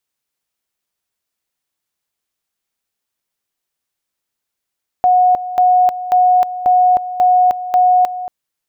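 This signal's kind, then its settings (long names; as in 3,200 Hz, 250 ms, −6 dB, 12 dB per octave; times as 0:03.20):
tone at two levels in turn 729 Hz −7.5 dBFS, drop 13.5 dB, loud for 0.31 s, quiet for 0.23 s, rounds 6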